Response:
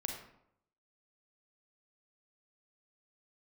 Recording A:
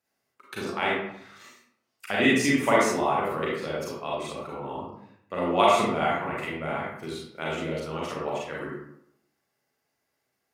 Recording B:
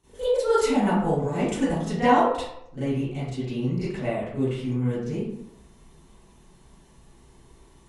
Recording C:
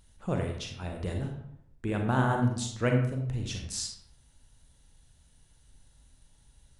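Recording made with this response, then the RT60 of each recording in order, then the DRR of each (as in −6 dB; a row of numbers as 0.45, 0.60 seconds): C; 0.75, 0.75, 0.75 seconds; −6.0, −15.5, 2.0 decibels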